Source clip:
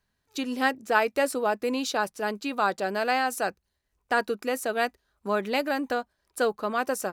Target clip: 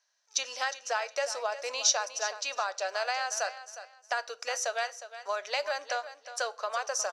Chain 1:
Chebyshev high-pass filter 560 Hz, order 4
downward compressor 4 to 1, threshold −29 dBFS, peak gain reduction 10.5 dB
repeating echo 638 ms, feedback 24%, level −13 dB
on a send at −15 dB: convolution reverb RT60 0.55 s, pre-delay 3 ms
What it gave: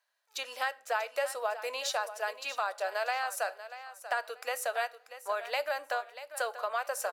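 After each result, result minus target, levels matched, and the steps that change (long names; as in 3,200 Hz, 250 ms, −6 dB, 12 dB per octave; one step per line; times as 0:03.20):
echo 278 ms late; 8,000 Hz band −8.0 dB
change: repeating echo 360 ms, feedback 24%, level −13 dB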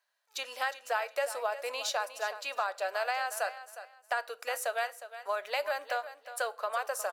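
8,000 Hz band −8.5 dB
add after downward compressor: low-pass with resonance 5,900 Hz, resonance Q 7.9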